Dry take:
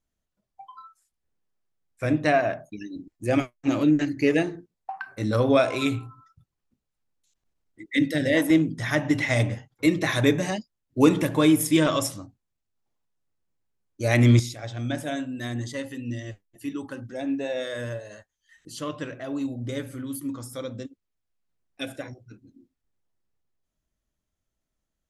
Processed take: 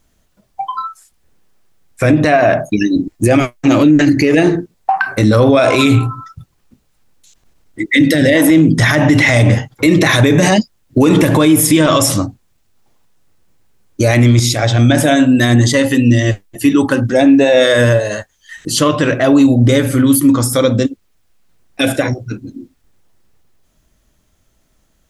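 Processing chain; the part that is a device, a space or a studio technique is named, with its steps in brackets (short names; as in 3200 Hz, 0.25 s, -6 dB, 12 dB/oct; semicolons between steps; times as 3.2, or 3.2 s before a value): loud club master (compressor 2.5:1, threshold -22 dBFS, peak gain reduction 7.5 dB; hard clip -13 dBFS, distortion -40 dB; maximiser +24.5 dB); gain -1 dB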